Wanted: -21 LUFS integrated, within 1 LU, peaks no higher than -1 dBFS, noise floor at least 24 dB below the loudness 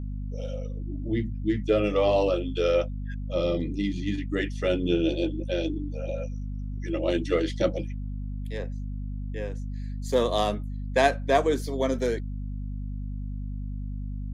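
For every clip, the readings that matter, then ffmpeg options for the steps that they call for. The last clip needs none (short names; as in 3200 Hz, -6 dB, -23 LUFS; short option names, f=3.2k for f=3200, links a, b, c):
hum 50 Hz; harmonics up to 250 Hz; hum level -30 dBFS; loudness -28.5 LUFS; peak -7.5 dBFS; loudness target -21.0 LUFS
-> -af "bandreject=f=50:t=h:w=4,bandreject=f=100:t=h:w=4,bandreject=f=150:t=h:w=4,bandreject=f=200:t=h:w=4,bandreject=f=250:t=h:w=4"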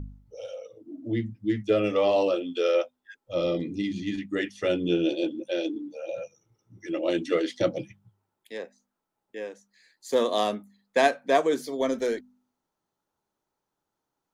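hum none; loudness -27.0 LUFS; peak -8.0 dBFS; loudness target -21.0 LUFS
-> -af "volume=6dB"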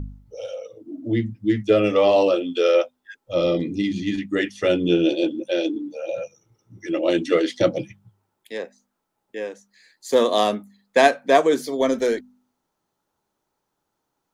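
loudness -21.0 LUFS; peak -2.0 dBFS; noise floor -78 dBFS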